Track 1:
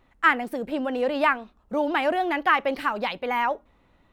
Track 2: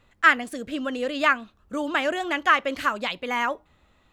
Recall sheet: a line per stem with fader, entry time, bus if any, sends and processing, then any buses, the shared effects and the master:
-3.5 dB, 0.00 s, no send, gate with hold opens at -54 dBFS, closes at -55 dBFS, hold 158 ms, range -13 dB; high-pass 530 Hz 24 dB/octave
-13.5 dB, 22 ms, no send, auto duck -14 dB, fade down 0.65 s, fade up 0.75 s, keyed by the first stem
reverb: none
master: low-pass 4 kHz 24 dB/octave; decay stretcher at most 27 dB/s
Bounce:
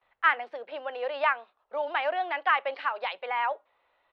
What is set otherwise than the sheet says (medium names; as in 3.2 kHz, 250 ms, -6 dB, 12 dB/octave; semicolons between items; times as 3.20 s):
stem 2 -13.5 dB -> -22.5 dB; master: missing decay stretcher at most 27 dB/s